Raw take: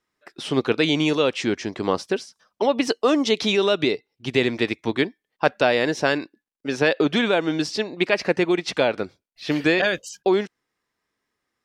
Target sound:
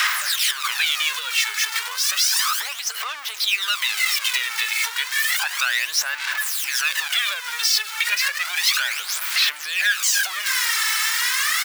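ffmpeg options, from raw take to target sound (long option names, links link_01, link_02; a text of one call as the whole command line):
ffmpeg -i in.wav -filter_complex "[0:a]aeval=exprs='val(0)+0.5*0.126*sgn(val(0))':channel_layout=same,asplit=2[link_01][link_02];[link_02]aecho=0:1:680:0.0794[link_03];[link_01][link_03]amix=inputs=2:normalize=0,aphaser=in_gain=1:out_gain=1:delay=2.3:decay=0.66:speed=0.32:type=sinusoidal,acompressor=threshold=-17dB:ratio=6,highpass=frequency=1300:width=0.5412,highpass=frequency=1300:width=1.3066,volume=3dB" out.wav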